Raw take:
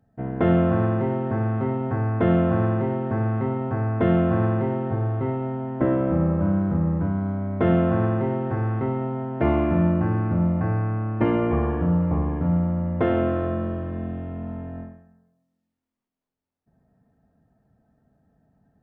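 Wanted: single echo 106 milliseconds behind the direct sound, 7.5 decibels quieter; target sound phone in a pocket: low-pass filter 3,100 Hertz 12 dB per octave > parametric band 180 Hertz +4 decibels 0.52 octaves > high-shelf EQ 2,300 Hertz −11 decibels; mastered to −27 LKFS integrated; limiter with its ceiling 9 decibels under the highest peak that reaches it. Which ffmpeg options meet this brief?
ffmpeg -i in.wav -af "alimiter=limit=-17dB:level=0:latency=1,lowpass=3100,equalizer=frequency=180:width_type=o:width=0.52:gain=4,highshelf=frequency=2300:gain=-11,aecho=1:1:106:0.422,volume=-2dB" out.wav

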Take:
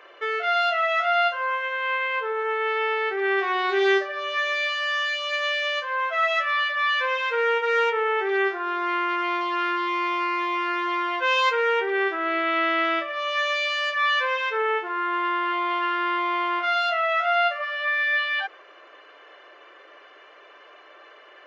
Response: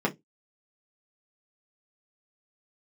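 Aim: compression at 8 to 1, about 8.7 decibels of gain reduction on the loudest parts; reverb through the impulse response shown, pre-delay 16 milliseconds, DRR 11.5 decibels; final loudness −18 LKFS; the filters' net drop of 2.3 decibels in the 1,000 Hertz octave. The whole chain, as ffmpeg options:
-filter_complex "[0:a]equalizer=frequency=1000:width_type=o:gain=-3,acompressor=threshold=-27dB:ratio=8,asplit=2[link_01][link_02];[1:a]atrim=start_sample=2205,adelay=16[link_03];[link_02][link_03]afir=irnorm=-1:irlink=0,volume=-22.5dB[link_04];[link_01][link_04]amix=inputs=2:normalize=0,volume=11.5dB"

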